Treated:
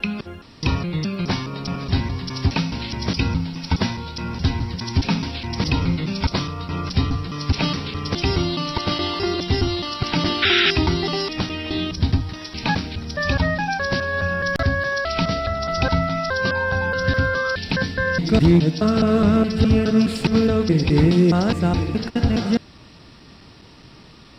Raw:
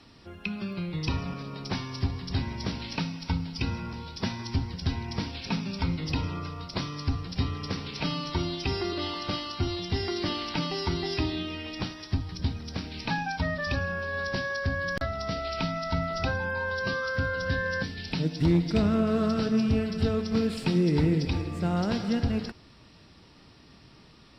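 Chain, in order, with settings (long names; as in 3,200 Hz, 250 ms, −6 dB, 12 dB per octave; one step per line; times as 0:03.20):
slices reordered back to front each 209 ms, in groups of 3
sound drawn into the spectrogram noise, 0:10.42–0:10.71, 1,300–4,000 Hz −26 dBFS
level +8.5 dB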